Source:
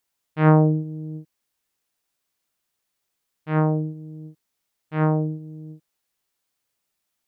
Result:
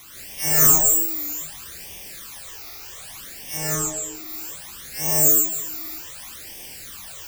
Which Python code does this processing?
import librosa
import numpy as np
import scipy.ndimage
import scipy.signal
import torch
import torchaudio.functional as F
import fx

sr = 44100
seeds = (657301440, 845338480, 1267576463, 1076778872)

p1 = fx.freq_snap(x, sr, grid_st=2)
p2 = fx.high_shelf(p1, sr, hz=2000.0, db=9.5)
p3 = fx.dispersion(p2, sr, late='lows', ms=78.0, hz=800.0)
p4 = (np.kron(scipy.signal.resample_poly(p3, 1, 6), np.eye(6)[0]) * 6)[:len(p3)]
p5 = fx.quant_dither(p4, sr, seeds[0], bits=6, dither='triangular')
p6 = fx.air_absorb(p5, sr, metres=58.0, at=(3.57, 4.15))
p7 = p6 + fx.echo_single(p6, sr, ms=151, db=-14.0, dry=0)
p8 = fx.rev_gated(p7, sr, seeds[1], gate_ms=200, shape='rising', drr_db=-6.0)
p9 = fx.phaser_stages(p8, sr, stages=12, low_hz=160.0, high_hz=1400.0, hz=0.64, feedback_pct=0)
p10 = fx.record_warp(p9, sr, rpm=33.33, depth_cents=100.0)
y = F.gain(torch.from_numpy(p10), -6.5).numpy()